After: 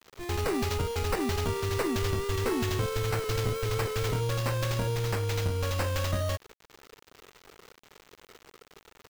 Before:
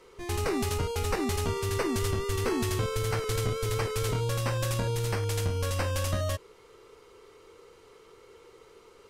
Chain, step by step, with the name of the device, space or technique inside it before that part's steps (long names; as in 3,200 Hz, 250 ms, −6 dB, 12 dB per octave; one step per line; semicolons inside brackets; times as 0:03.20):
early 8-bit sampler (sample-rate reduction 10,000 Hz, jitter 0%; bit reduction 8 bits)